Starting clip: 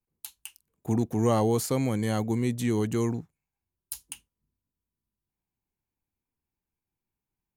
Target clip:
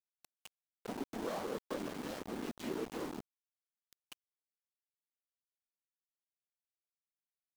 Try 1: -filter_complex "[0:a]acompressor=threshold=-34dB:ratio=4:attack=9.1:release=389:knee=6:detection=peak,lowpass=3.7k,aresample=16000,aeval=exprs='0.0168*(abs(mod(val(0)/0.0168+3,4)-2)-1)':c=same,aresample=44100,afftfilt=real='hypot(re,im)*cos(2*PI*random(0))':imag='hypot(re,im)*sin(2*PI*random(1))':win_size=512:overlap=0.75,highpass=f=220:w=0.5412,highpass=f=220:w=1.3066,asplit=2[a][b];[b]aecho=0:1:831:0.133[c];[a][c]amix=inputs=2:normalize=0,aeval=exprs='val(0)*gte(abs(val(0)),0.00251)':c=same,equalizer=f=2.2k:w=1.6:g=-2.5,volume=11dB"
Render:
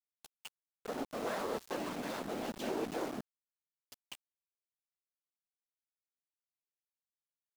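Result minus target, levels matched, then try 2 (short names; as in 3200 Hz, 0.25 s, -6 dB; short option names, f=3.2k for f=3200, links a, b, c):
compressor: peak gain reduction -5 dB
-filter_complex "[0:a]acompressor=threshold=-40.5dB:ratio=4:attack=9.1:release=389:knee=6:detection=peak,lowpass=3.7k,aresample=16000,aeval=exprs='0.0168*(abs(mod(val(0)/0.0168+3,4)-2)-1)':c=same,aresample=44100,afftfilt=real='hypot(re,im)*cos(2*PI*random(0))':imag='hypot(re,im)*sin(2*PI*random(1))':win_size=512:overlap=0.75,highpass=f=220:w=0.5412,highpass=f=220:w=1.3066,asplit=2[a][b];[b]aecho=0:1:831:0.133[c];[a][c]amix=inputs=2:normalize=0,aeval=exprs='val(0)*gte(abs(val(0)),0.00251)':c=same,equalizer=f=2.2k:w=1.6:g=-2.5,volume=11dB"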